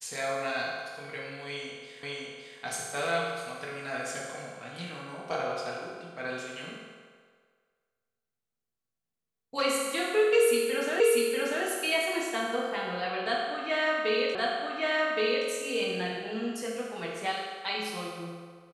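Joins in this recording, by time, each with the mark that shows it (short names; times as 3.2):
2.03 repeat of the last 0.56 s
11 repeat of the last 0.64 s
14.35 repeat of the last 1.12 s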